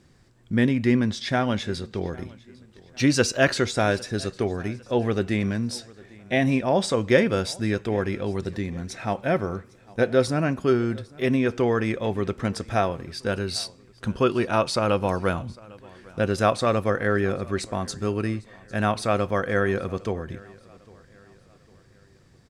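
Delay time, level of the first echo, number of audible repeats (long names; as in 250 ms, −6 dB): 803 ms, −23.5 dB, 2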